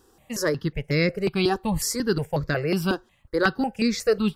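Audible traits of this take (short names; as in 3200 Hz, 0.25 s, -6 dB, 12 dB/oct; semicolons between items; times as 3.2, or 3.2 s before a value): notches that jump at a steady rate 5.5 Hz 580–3000 Hz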